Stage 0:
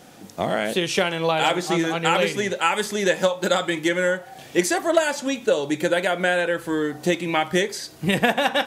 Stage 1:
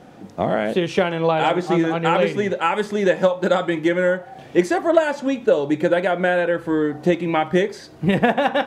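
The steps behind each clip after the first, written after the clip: LPF 1100 Hz 6 dB/oct; gain +4.5 dB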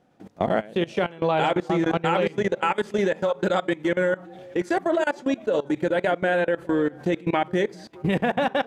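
delay with a stepping band-pass 0.205 s, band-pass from 160 Hz, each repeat 1.4 oct, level -11 dB; level quantiser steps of 21 dB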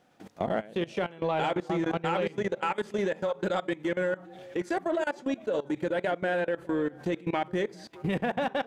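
in parallel at -8 dB: soft clip -22 dBFS, distortion -11 dB; on the sum: mismatched tape noise reduction encoder only; gain -8 dB

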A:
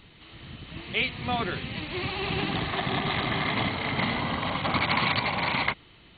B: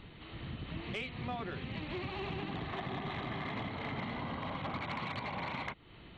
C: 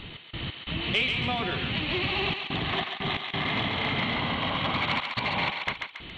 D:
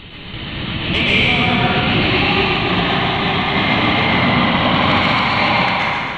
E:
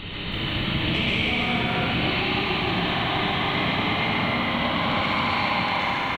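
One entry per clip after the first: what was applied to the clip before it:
high shelf 2300 Hz -9.5 dB; compressor 5:1, threshold -39 dBFS, peak gain reduction 14.5 dB; soft clip -30.5 dBFS, distortion -23 dB; gain +2.5 dB
bell 3100 Hz +9.5 dB 0.97 oct; step gate "x.x.xxxxxxxxxx.x" 90 bpm -60 dB; thinning echo 0.138 s, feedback 49%, high-pass 890 Hz, level -4 dB; gain +8.5 dB
plate-style reverb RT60 2.4 s, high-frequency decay 0.5×, pre-delay 0.105 s, DRR -7.5 dB; gain +5.5 dB
compressor 5:1, threshold -25 dBFS, peak gain reduction 13 dB; on a send: early reflections 30 ms -6.5 dB, 73 ms -4 dB; on the sum: lo-fi delay 0.315 s, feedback 35%, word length 9-bit, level -6.5 dB

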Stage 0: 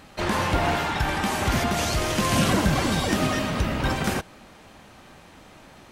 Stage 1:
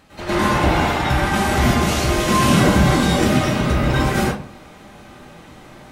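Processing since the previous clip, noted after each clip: reverb RT60 0.40 s, pre-delay 96 ms, DRR -10 dB; gain -4.5 dB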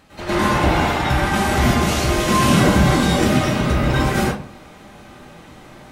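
nothing audible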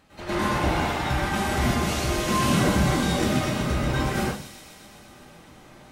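thin delay 0.126 s, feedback 77%, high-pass 3600 Hz, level -7 dB; gain -7 dB

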